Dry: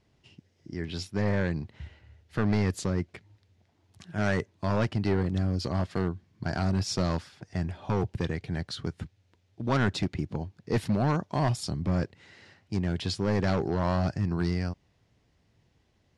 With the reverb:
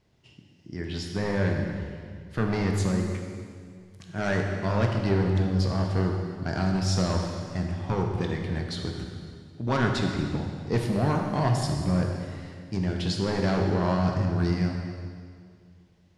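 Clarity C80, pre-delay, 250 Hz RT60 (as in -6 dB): 4.0 dB, 14 ms, 2.2 s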